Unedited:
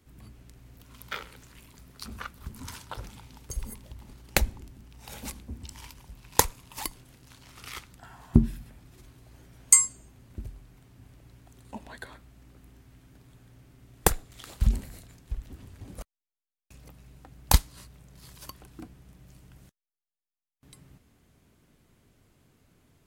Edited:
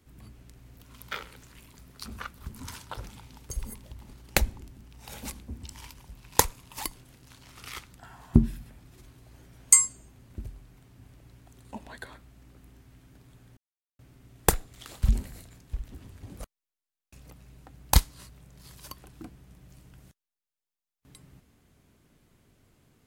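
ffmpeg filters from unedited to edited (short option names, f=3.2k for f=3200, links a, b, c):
-filter_complex "[0:a]asplit=2[a][b];[a]atrim=end=13.57,asetpts=PTS-STARTPTS,afade=t=out:st=13.566:d=0.004:c=hsin,apad=pad_dur=0.42[c];[b]atrim=start=13.57,asetpts=PTS-STARTPTS,afade=t=in:d=0.004:c=hsin[d];[c][d]concat=n=2:v=0:a=1"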